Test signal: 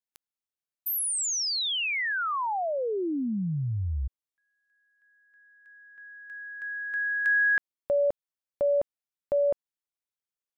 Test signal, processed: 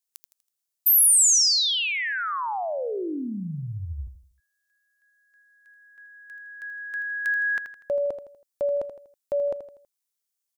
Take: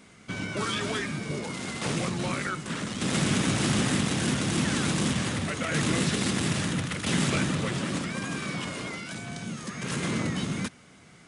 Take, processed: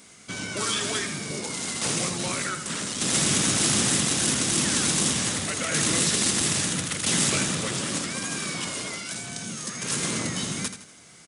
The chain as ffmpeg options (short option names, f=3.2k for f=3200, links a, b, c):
-af "bass=f=250:g=-4,treble=f=4k:g=12,aecho=1:1:81|162|243|324:0.316|0.126|0.0506|0.0202"